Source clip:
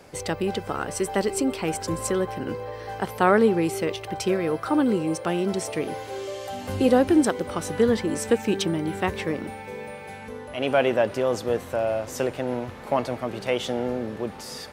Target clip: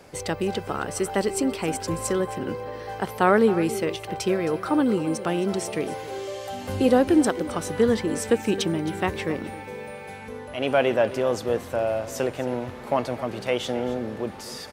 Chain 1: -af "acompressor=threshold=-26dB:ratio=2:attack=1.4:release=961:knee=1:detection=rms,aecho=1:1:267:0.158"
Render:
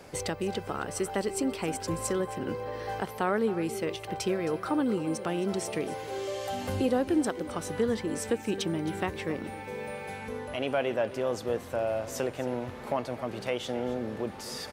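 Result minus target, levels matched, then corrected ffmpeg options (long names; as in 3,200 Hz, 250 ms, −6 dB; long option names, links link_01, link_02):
downward compressor: peak gain reduction +10 dB
-af "aecho=1:1:267:0.158"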